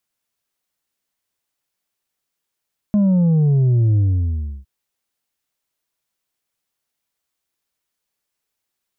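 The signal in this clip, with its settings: sub drop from 210 Hz, over 1.71 s, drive 4 dB, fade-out 0.68 s, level -12.5 dB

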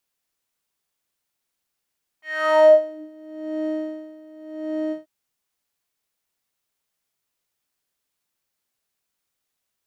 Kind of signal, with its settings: synth patch with tremolo D#5, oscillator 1 square, oscillator 2 saw, interval +12 st, detune 24 cents, oscillator 2 level -12 dB, sub -9 dB, noise -17.5 dB, filter bandpass, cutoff 140 Hz, Q 5.2, filter envelope 4 oct, filter decay 0.89 s, filter sustain 20%, attack 438 ms, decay 0.15 s, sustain -8 dB, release 0.14 s, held 2.70 s, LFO 0.86 Hz, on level 19.5 dB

